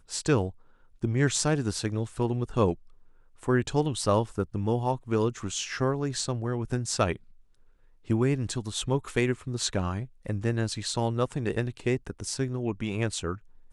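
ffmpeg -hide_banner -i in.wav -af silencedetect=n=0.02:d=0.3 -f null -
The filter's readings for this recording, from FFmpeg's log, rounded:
silence_start: 0.50
silence_end: 1.03 | silence_duration: 0.53
silence_start: 2.73
silence_end: 3.43 | silence_duration: 0.70
silence_start: 7.16
silence_end: 8.10 | silence_duration: 0.94
silence_start: 13.35
silence_end: 13.73 | silence_duration: 0.38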